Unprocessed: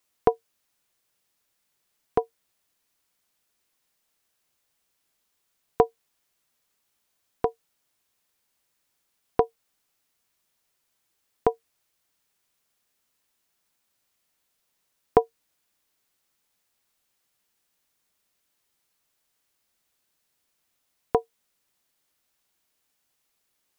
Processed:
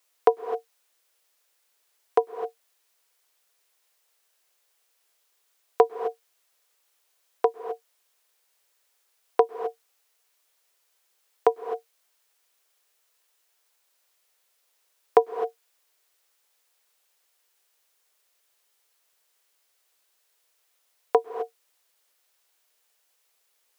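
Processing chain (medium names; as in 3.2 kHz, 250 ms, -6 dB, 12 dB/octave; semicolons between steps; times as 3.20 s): Chebyshev high-pass 440 Hz, order 3; in parallel at -1 dB: peak limiter -11 dBFS, peak gain reduction 7 dB; on the sum: reverberation, pre-delay 97 ms, DRR 9.5 dB; trim -1 dB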